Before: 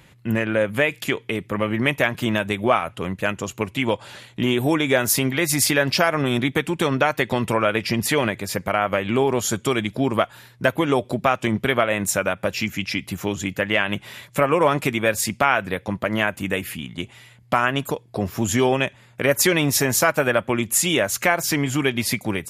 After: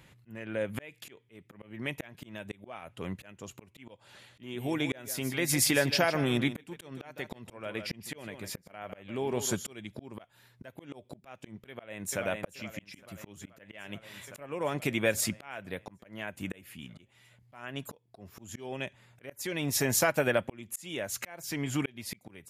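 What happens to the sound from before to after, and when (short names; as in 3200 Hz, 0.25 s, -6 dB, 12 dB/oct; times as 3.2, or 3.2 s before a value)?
3.98–9.74 echo 0.154 s -13 dB
11.69–12.19 echo throw 0.43 s, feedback 75%, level -10.5 dB
whole clip: dynamic EQ 1200 Hz, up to -6 dB, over -35 dBFS, Q 2.3; auto swell 0.628 s; gain -6.5 dB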